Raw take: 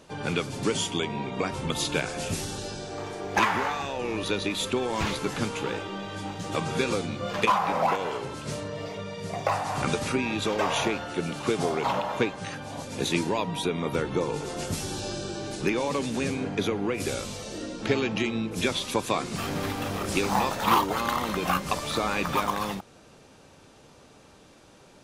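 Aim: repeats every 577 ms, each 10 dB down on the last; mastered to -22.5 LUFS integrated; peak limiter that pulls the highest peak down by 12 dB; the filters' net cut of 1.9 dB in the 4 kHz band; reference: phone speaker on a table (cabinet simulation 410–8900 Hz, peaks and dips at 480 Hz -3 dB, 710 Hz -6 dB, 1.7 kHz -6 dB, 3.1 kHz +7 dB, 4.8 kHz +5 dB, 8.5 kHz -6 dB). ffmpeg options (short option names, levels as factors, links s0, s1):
-af "equalizer=f=4000:t=o:g=-8.5,alimiter=limit=0.0631:level=0:latency=1,highpass=f=410:w=0.5412,highpass=f=410:w=1.3066,equalizer=f=480:t=q:w=4:g=-3,equalizer=f=710:t=q:w=4:g=-6,equalizer=f=1700:t=q:w=4:g=-6,equalizer=f=3100:t=q:w=4:g=7,equalizer=f=4800:t=q:w=4:g=5,equalizer=f=8500:t=q:w=4:g=-6,lowpass=f=8900:w=0.5412,lowpass=f=8900:w=1.3066,aecho=1:1:577|1154|1731|2308:0.316|0.101|0.0324|0.0104,volume=5.01"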